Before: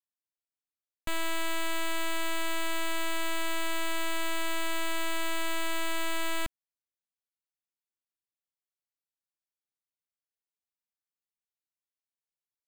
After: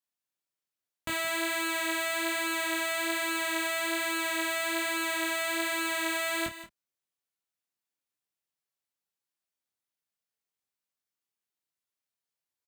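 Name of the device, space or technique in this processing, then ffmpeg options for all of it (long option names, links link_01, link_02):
double-tracked vocal: -filter_complex "[0:a]asplit=2[link_01][link_02];[link_02]adelay=30,volume=-10dB[link_03];[link_01][link_03]amix=inputs=2:normalize=0,flanger=delay=19:depth=4:speed=1.2,highpass=83,aecho=1:1:175|180:0.2|0.1,volume=6dB"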